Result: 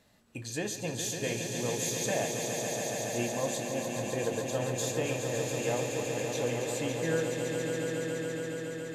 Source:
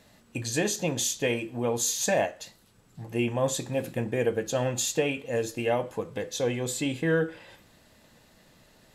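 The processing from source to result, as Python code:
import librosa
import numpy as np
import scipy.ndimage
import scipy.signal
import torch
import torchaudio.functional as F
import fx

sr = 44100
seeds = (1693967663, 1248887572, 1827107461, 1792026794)

y = fx.echo_swell(x, sr, ms=140, loudest=5, wet_db=-7.0)
y = F.gain(torch.from_numpy(y), -7.5).numpy()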